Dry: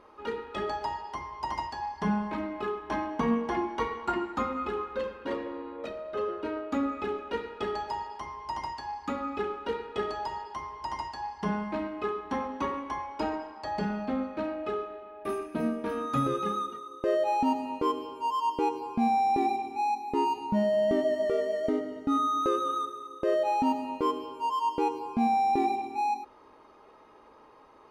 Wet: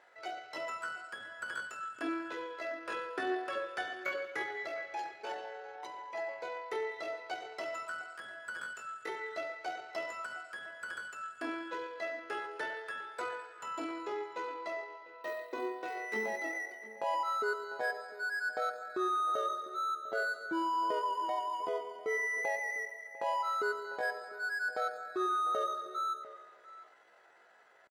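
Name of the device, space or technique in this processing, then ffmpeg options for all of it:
chipmunk voice: -filter_complex "[0:a]highpass=170,asetrate=70004,aresample=44100,atempo=0.629961,asplit=2[a][b];[b]adelay=699.7,volume=-16dB,highshelf=f=4k:g=-15.7[c];[a][c]amix=inputs=2:normalize=0,volume=-7dB"

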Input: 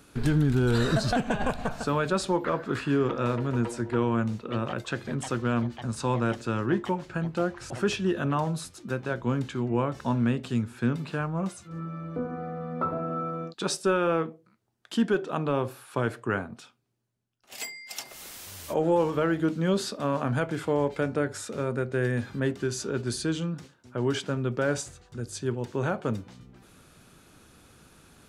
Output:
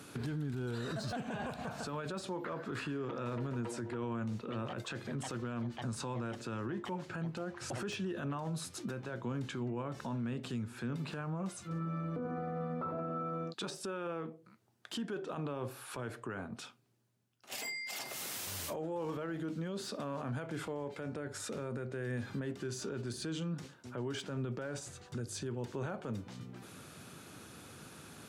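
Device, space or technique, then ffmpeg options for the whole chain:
podcast mastering chain: -af "highpass=f=87:w=0.5412,highpass=f=87:w=1.3066,deesser=0.8,acompressor=threshold=-40dB:ratio=2.5,alimiter=level_in=10.5dB:limit=-24dB:level=0:latency=1:release=22,volume=-10.5dB,volume=4dB" -ar 44100 -c:a libmp3lame -b:a 96k

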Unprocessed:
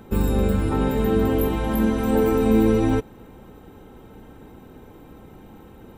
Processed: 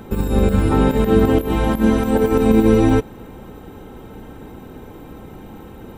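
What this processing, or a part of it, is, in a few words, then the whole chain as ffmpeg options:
de-esser from a sidechain: -filter_complex "[0:a]asplit=2[a][b];[b]highpass=5.4k,apad=whole_len=263321[c];[a][c]sidechaincompress=threshold=-47dB:ratio=6:attack=4.5:release=39,volume=7.5dB"

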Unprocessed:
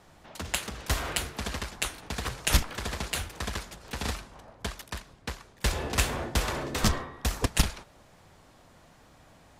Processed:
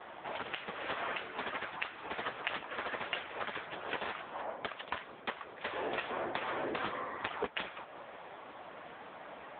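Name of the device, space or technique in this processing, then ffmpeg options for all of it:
voicemail: -filter_complex "[0:a]asettb=1/sr,asplit=3[a][b][c];[a]atrim=end=1.724[d];[b]atrim=start=1.72:end=2.22,asetpts=PTS-STARTPTS,afade=t=in:d=0.004:c=qsin,afade=t=out:st=0.496:d=0.004:c=qsin,adynamicequalizer=threshold=0.00158:dfrequency=540:dqfactor=3.2:tfrequency=540:tqfactor=3.2:attack=5:release=100:ratio=0.375:range=2.5:mode=cutabove:tftype=bell[e];[c]atrim=start=2.216[f];[d][e]acrossfade=d=0.004:c1=hsin:c2=qsin[g];[g][f]acrossfade=d=0.004:c1=qsin:c2=hsin,highpass=370,lowpass=3.2k,acompressor=threshold=-44dB:ratio=12,volume=14dB" -ar 8000 -c:a libopencore_amrnb -b:a 6700

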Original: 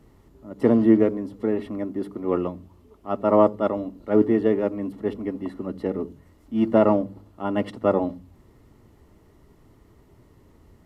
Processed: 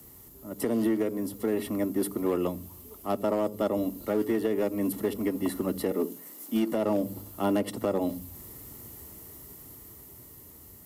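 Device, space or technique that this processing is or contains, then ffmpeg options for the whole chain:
FM broadcast chain: -filter_complex "[0:a]asettb=1/sr,asplit=3[a][b][c];[a]atrim=end=5.914[d];[b]atrim=start=5.91:end=6.72,asetpts=PTS-STARTPTS,afade=t=in:d=0.004:c=qsin,afade=t=out:st=0.806:d=0.004:c=qsin,highpass=f=210:w=0.5412,highpass=f=210:w=1.3066[e];[c]atrim=start=6.716[f];[d][e]acrossfade=d=0.004:c1=hsin:c2=qsin[g];[g][f]acrossfade=d=0.004:c1=qsin:c2=hsin,highpass=51,dynaudnorm=f=370:g=11:m=11.5dB,acrossover=split=260|740|1800[h][i][j][k];[h]acompressor=threshold=-30dB:ratio=4[l];[i]acompressor=threshold=-20dB:ratio=4[m];[j]acompressor=threshold=-39dB:ratio=4[n];[k]acompressor=threshold=-44dB:ratio=4[o];[l][m][n][o]amix=inputs=4:normalize=0,aemphasis=mode=production:type=50fm,alimiter=limit=-16.5dB:level=0:latency=1:release=231,asoftclip=type=hard:threshold=-18.5dB,lowpass=f=15k:w=0.5412,lowpass=f=15k:w=1.3066,aemphasis=mode=production:type=50fm"

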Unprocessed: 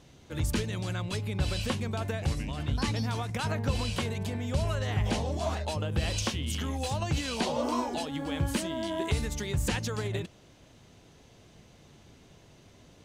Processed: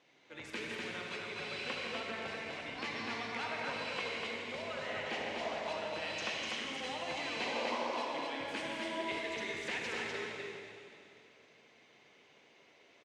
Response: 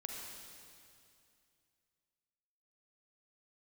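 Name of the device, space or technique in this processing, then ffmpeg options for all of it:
station announcement: -filter_complex "[0:a]highpass=390,lowpass=4.6k,equalizer=f=2.2k:t=o:w=0.58:g=8.5,aecho=1:1:166.2|247.8:0.282|0.708[a];[1:a]atrim=start_sample=2205[b];[a][b]afir=irnorm=-1:irlink=0,volume=-5dB"

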